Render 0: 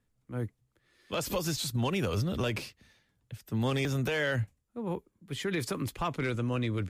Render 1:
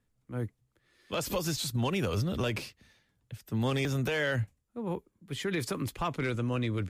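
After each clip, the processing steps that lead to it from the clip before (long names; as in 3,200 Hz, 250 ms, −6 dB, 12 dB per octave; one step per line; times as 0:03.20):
no processing that can be heard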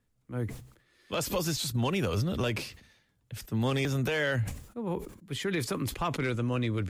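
level that may fall only so fast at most 96 dB per second
level +1 dB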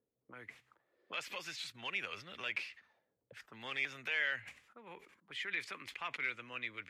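envelope filter 440–2,200 Hz, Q 2.6, up, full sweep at −35.5 dBFS
level +1.5 dB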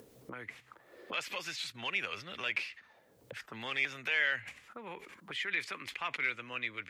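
upward compression, threshold −43 dBFS
level +4.5 dB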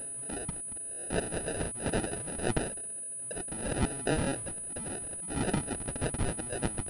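flanger swept by the level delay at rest 8.7 ms, full sweep at −31.5 dBFS
sample-rate reduction 1,100 Hz, jitter 0%
switching amplifier with a slow clock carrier 9,900 Hz
level +8 dB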